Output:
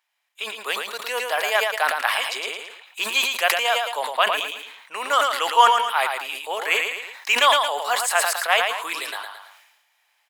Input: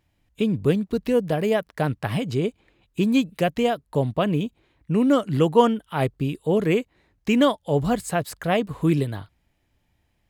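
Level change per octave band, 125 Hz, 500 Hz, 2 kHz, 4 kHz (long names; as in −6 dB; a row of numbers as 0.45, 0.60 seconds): below −40 dB, −5.0 dB, +12.0 dB, +12.5 dB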